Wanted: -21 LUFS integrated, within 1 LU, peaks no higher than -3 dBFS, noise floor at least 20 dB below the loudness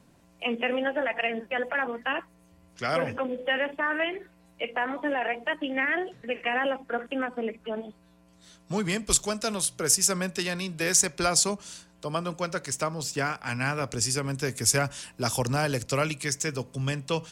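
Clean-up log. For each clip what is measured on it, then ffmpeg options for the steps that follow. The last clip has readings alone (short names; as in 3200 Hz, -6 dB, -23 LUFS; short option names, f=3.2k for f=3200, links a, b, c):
loudness -27.5 LUFS; peak -6.0 dBFS; loudness target -21.0 LUFS
-> -af "volume=6.5dB,alimiter=limit=-3dB:level=0:latency=1"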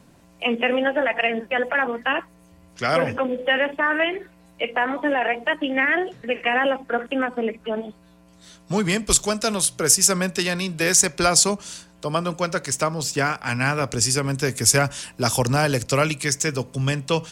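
loudness -21.5 LUFS; peak -3.0 dBFS; noise floor -52 dBFS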